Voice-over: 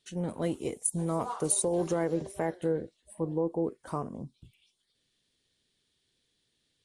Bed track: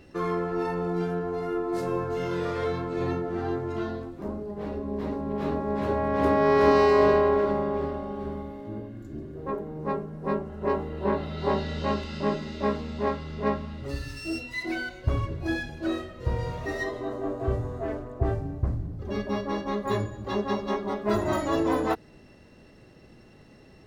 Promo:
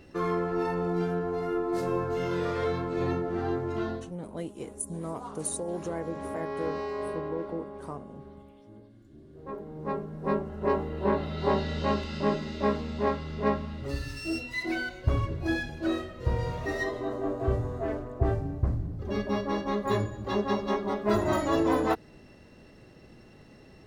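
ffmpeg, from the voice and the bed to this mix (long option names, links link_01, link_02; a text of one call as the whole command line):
ffmpeg -i stem1.wav -i stem2.wav -filter_complex "[0:a]adelay=3950,volume=-5.5dB[link_01];[1:a]volume=14dB,afade=type=out:start_time=3.92:duration=0.25:silence=0.199526,afade=type=in:start_time=9.19:duration=1.11:silence=0.188365[link_02];[link_01][link_02]amix=inputs=2:normalize=0" out.wav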